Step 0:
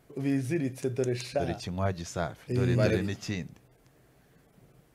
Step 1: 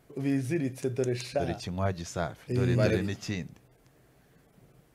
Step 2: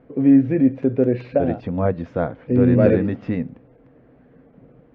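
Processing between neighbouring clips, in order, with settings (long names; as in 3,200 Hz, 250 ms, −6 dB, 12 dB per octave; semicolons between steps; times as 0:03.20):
no processing that can be heard
Bessel low-pass filter 1,700 Hz, order 4; hollow resonant body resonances 260/490 Hz, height 12 dB, ringing for 45 ms; level +6 dB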